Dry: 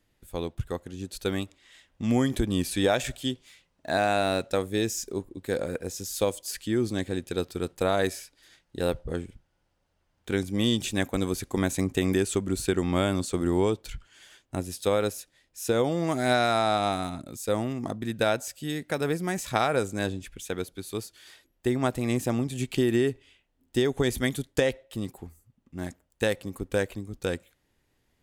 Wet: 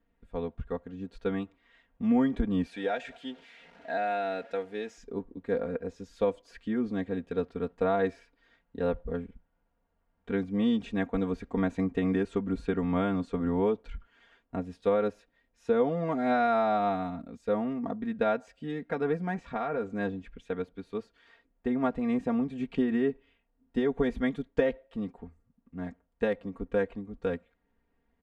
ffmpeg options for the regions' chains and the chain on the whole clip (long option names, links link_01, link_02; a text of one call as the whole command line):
ffmpeg -i in.wav -filter_complex "[0:a]asettb=1/sr,asplit=3[link_01][link_02][link_03];[link_01]atrim=end=2.664[link_04];[link_02]atrim=start=2.66:end=4.98,asetpts=PTS-STARTPTS,afade=type=in:duration=0.004:curve=qsin,afade=type=out:start_time=2.316:duration=0.004:curve=qsin,aeval=exprs='val(0)+0.5*0.0133*sgn(val(0))':channel_layout=same,highpass=frequency=800:poles=1,equalizer=frequency=1100:width_type=o:width=0.26:gain=-15[link_05];[link_03]atrim=start=4.976[link_06];[link_04][link_05]acrossfade=duration=0.004:curve1=hsin:curve2=qsin[link_07];[link_07][link_06]acrossfade=duration=0.004:curve1=qsin:curve2=hsin,asettb=1/sr,asplit=3[link_08][link_09][link_10];[link_08]atrim=end=19.344[link_11];[link_09]atrim=start=19.34:end=19.9,asetpts=PTS-STARTPTS,afade=type=in:duration=0.004:curve=qsin,afade=type=out:start_time=0.556:duration=0.004:curve=qsin,highshelf=frequency=7700:gain=-10,acompressor=threshold=-28dB:ratio=2:attack=3.2:release=140:knee=1:detection=peak,asplit=2[link_12][link_13];[link_13]adelay=13,volume=-14dB[link_14];[link_12][link_14]amix=inputs=2:normalize=0,atrim=end_sample=24696[link_15];[link_10]atrim=start=19.896[link_16];[link_11][link_15]acrossfade=duration=0.004:curve1=hsin:curve2=qsin[link_17];[link_17][link_16]acrossfade=duration=0.004:curve1=qsin:curve2=hsin,lowpass=1700,aecho=1:1:4.3:0.84,volume=-4dB" out.wav